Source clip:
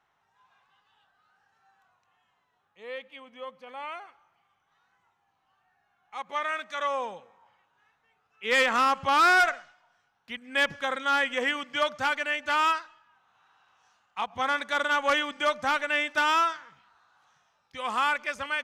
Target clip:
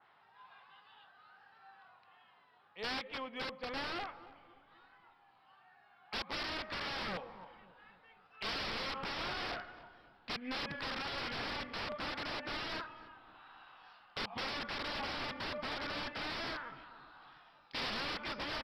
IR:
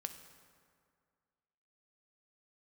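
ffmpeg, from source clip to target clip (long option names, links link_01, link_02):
-filter_complex "[0:a]highpass=frequency=190:poles=1,asplit=2[link_01][link_02];[link_02]acompressor=threshold=-37dB:ratio=8,volume=2dB[link_03];[link_01][link_03]amix=inputs=2:normalize=0,alimiter=limit=-20dB:level=0:latency=1:release=35,acontrast=28,aresample=11025,aeval=exprs='(mod(22.4*val(0)+1,2)-1)/22.4':channel_layout=same,aresample=44100,aeval=exprs='0.0841*(cos(1*acos(clip(val(0)/0.0841,-1,1)))-cos(1*PI/2))+0.0106*(cos(3*acos(clip(val(0)/0.0841,-1,1)))-cos(3*PI/2))+0.000944*(cos(4*acos(clip(val(0)/0.0841,-1,1)))-cos(4*PI/2))+0.00133*(cos(6*acos(clip(val(0)/0.0841,-1,1)))-cos(6*PI/2))':channel_layout=same,asoftclip=type=tanh:threshold=-29.5dB,asplit=2[link_04][link_05];[link_05]adelay=272,lowpass=frequency=840:poles=1,volume=-14dB,asplit=2[link_06][link_07];[link_07]adelay=272,lowpass=frequency=840:poles=1,volume=0.52,asplit=2[link_08][link_09];[link_09]adelay=272,lowpass=frequency=840:poles=1,volume=0.52,asplit=2[link_10][link_11];[link_11]adelay=272,lowpass=frequency=840:poles=1,volume=0.52,asplit=2[link_12][link_13];[link_13]adelay=272,lowpass=frequency=840:poles=1,volume=0.52[link_14];[link_04][link_06][link_08][link_10][link_12][link_14]amix=inputs=6:normalize=0,adynamicequalizer=threshold=0.00282:dfrequency=2500:dqfactor=0.7:tfrequency=2500:tqfactor=0.7:attack=5:release=100:ratio=0.375:range=3.5:mode=cutabove:tftype=highshelf,volume=-1dB"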